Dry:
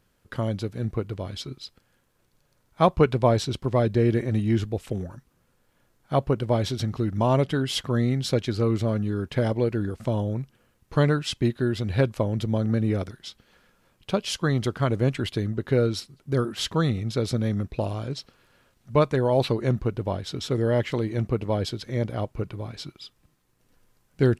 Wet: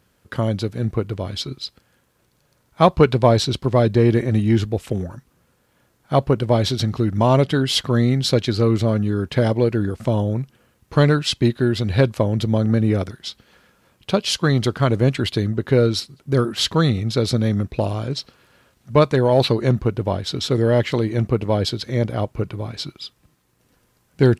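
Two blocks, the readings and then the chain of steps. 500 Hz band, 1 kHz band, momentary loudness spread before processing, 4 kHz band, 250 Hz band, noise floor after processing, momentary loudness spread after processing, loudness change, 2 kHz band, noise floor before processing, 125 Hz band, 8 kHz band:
+6.0 dB, +5.5 dB, 12 LU, +9.0 dB, +6.0 dB, -64 dBFS, 11 LU, +6.0 dB, +6.0 dB, -68 dBFS, +6.0 dB, +6.5 dB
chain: high-pass 46 Hz; dynamic bell 4.2 kHz, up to +5 dB, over -48 dBFS, Q 2.6; in parallel at -11.5 dB: hard clipper -16.5 dBFS, distortion -15 dB; on the sum: trim +4 dB

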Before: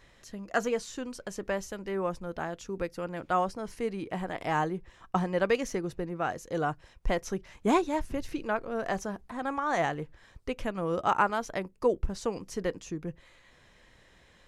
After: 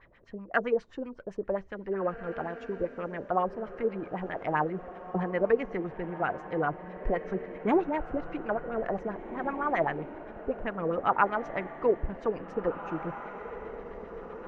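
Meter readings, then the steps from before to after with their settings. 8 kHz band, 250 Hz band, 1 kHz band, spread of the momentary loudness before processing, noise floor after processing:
under -25 dB, -0.5 dB, 0.0 dB, 11 LU, -51 dBFS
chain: LFO low-pass sine 7.7 Hz 400–2400 Hz; echo that smears into a reverb 1860 ms, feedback 41%, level -11.5 dB; trim -2.5 dB

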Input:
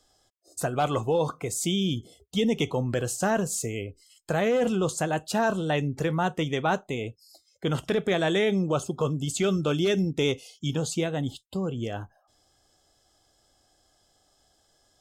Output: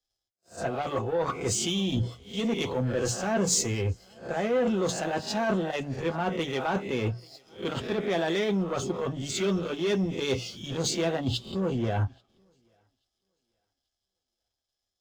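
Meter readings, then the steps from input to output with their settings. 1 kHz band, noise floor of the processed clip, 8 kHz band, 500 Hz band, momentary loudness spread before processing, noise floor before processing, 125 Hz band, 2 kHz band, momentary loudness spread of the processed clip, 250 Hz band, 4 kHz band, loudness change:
-2.5 dB, under -85 dBFS, +2.0 dB, -2.0 dB, 9 LU, -68 dBFS, -2.0 dB, -2.5 dB, 7 LU, -2.0 dB, 0.0 dB, -1.5 dB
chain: reverse spectral sustain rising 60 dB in 0.32 s; low-pass 6.1 kHz 24 dB/octave; hum notches 60/120/180 Hz; reverse; compression 12:1, threshold -32 dBFS, peak gain reduction 13.5 dB; reverse; waveshaping leveller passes 2; comb of notches 150 Hz; on a send: thinning echo 836 ms, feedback 42%, high-pass 170 Hz, level -22 dB; on the sum: three bands expanded up and down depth 70%; trim +3.5 dB

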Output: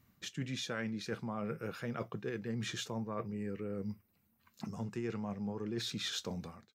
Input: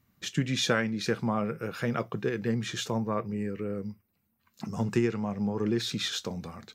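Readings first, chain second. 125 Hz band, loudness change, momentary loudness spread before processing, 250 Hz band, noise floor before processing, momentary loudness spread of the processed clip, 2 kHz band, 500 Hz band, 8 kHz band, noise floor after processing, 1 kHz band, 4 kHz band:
-9.0 dB, -9.0 dB, 8 LU, -9.0 dB, -75 dBFS, 6 LU, -10.0 dB, -9.5 dB, -8.0 dB, -75 dBFS, -10.0 dB, -7.5 dB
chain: fade out at the end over 0.62 s; reverse; compression 6:1, threshold -37 dBFS, peak gain reduction 16 dB; reverse; trim +1 dB

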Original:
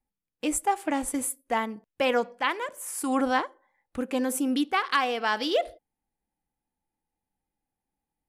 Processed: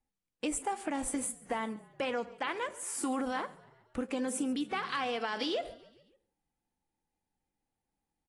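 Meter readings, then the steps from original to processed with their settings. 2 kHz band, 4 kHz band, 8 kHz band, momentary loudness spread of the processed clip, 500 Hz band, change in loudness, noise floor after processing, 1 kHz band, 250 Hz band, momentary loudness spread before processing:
-8.5 dB, -7.0 dB, -5.0 dB, 6 LU, -7.5 dB, -7.5 dB, under -85 dBFS, -9.0 dB, -6.5 dB, 8 LU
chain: peak limiter -19 dBFS, peak gain reduction 7.5 dB; compression 4:1, threshold -29 dBFS, peak gain reduction 5.5 dB; on a send: frequency-shifting echo 138 ms, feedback 57%, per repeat -36 Hz, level -22 dB; on the sum: trim -1.5 dB; AAC 32 kbps 22.05 kHz

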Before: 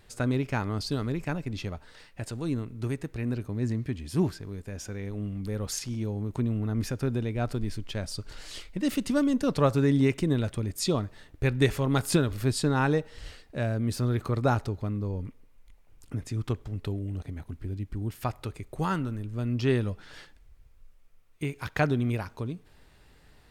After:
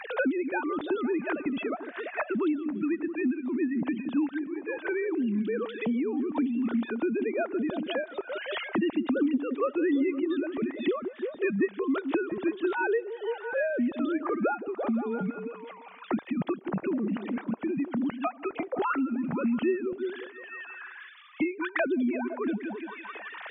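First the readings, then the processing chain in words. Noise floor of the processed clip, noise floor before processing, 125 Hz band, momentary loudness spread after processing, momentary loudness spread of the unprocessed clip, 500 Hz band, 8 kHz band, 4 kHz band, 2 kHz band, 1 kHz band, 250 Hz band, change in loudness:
-48 dBFS, -57 dBFS, -16.5 dB, 8 LU, 14 LU, +2.5 dB, under -40 dB, -6.0 dB, +3.5 dB, +0.5 dB, +2.5 dB, 0.0 dB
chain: formants replaced by sine waves; repeats whose band climbs or falls 169 ms, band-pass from 300 Hz, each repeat 0.7 oct, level -9.5 dB; three bands compressed up and down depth 100%

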